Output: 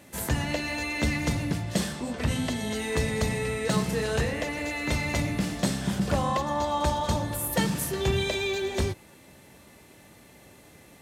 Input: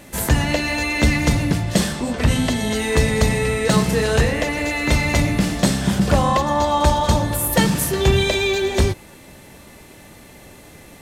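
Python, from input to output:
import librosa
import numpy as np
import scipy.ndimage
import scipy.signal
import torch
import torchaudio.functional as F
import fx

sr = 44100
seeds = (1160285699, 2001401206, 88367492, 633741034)

y = scipy.signal.sosfilt(scipy.signal.butter(2, 62.0, 'highpass', fs=sr, output='sos'), x)
y = y * 10.0 ** (-9.0 / 20.0)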